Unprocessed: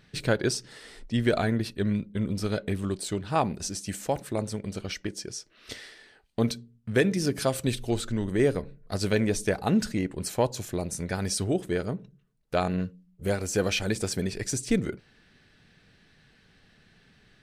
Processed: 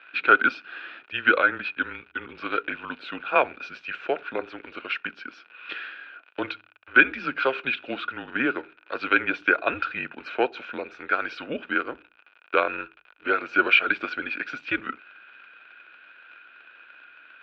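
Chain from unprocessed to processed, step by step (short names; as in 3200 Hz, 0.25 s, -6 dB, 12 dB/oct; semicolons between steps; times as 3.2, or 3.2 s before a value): crackle 74/s -40 dBFS; small resonant body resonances 1600/2600 Hz, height 18 dB, ringing for 20 ms; mistuned SSB -130 Hz 500–3500 Hz; gain +3 dB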